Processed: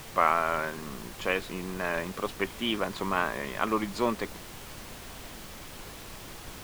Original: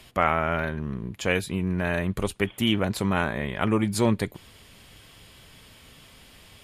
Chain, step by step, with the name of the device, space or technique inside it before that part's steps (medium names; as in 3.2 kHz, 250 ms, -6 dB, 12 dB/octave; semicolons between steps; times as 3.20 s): horn gramophone (band-pass 280–4400 Hz; peaking EQ 1.1 kHz +8 dB 0.4 oct; wow and flutter; pink noise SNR 11 dB); trim -3.5 dB